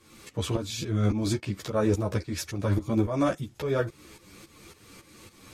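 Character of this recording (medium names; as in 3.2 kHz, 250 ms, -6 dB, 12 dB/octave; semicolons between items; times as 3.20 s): tremolo saw up 3.6 Hz, depth 80%; a shimmering, thickened sound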